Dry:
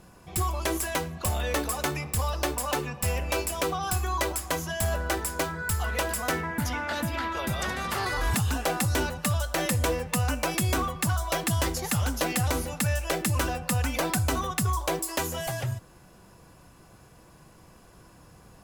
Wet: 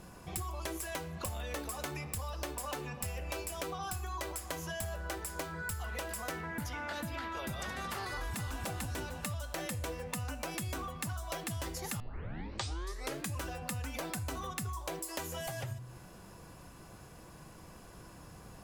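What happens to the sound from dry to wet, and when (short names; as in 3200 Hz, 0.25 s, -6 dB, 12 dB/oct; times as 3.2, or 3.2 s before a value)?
8.08–8.64 echo throw 0.3 s, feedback 40%, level -2.5 dB
12 tape start 1.34 s
whole clip: de-hum 124 Hz, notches 39; compressor, threshold -38 dBFS; gain +1 dB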